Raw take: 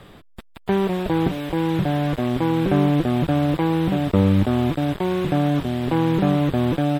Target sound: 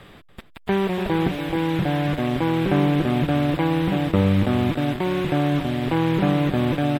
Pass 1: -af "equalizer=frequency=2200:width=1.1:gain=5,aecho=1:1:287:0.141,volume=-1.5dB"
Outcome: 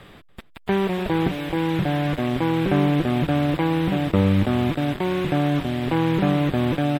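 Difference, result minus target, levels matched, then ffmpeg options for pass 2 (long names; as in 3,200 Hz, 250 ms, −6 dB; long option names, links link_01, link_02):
echo-to-direct −6.5 dB
-af "equalizer=frequency=2200:width=1.1:gain=5,aecho=1:1:287:0.299,volume=-1.5dB"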